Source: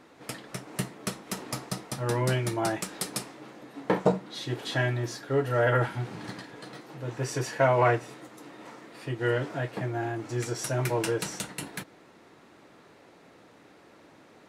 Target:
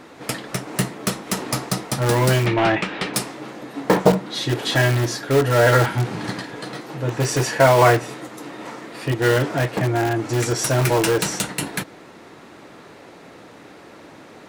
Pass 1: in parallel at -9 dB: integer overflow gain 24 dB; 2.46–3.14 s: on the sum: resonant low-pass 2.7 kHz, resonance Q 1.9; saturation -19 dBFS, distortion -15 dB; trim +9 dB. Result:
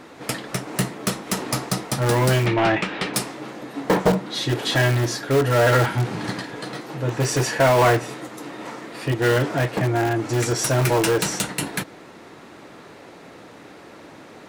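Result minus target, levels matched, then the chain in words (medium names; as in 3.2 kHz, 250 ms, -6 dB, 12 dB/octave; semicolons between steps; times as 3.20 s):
saturation: distortion +18 dB
in parallel at -9 dB: integer overflow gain 24 dB; 2.46–3.14 s: on the sum: resonant low-pass 2.7 kHz, resonance Q 1.9; saturation -7 dBFS, distortion -33 dB; trim +9 dB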